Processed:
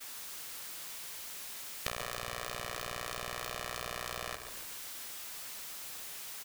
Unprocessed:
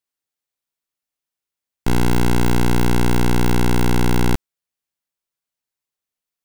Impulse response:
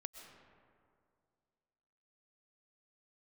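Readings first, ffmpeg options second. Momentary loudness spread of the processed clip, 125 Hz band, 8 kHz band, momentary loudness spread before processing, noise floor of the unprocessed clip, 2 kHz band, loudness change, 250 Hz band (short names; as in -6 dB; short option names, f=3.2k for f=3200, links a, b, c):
3 LU, -31.5 dB, -7.0 dB, 4 LU, under -85 dBFS, -12.5 dB, -20.0 dB, -35.0 dB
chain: -filter_complex "[0:a]aeval=exprs='val(0)+0.5*0.0168*sgn(val(0))':c=same,agate=range=-33dB:threshold=-39dB:ratio=3:detection=peak,highpass=700,acompressor=threshold=-37dB:ratio=12,asplit=7[a][b][c][d][e][f][g];[b]adelay=140,afreqshift=-41,volume=-8dB[h];[c]adelay=280,afreqshift=-82,volume=-13.5dB[i];[d]adelay=420,afreqshift=-123,volume=-19dB[j];[e]adelay=560,afreqshift=-164,volume=-24.5dB[k];[f]adelay=700,afreqshift=-205,volume=-30.1dB[l];[g]adelay=840,afreqshift=-246,volume=-35.6dB[m];[a][h][i][j][k][l][m]amix=inputs=7:normalize=0,aeval=exprs='val(0)*sgn(sin(2*PI*310*n/s))':c=same,volume=3.5dB"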